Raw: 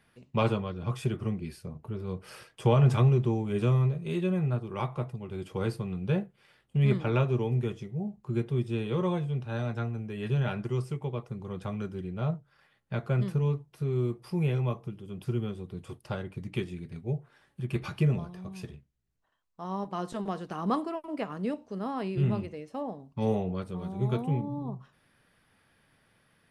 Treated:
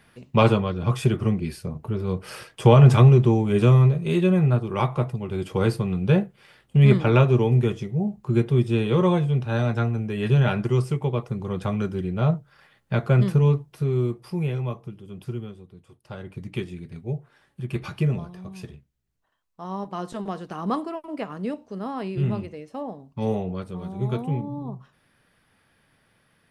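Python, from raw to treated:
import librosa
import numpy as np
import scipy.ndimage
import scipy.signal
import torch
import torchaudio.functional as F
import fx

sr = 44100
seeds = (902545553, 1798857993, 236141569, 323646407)

y = fx.gain(x, sr, db=fx.line((13.56, 9.0), (14.53, 1.0), (15.22, 1.0), (15.92, -10.5), (16.31, 2.5)))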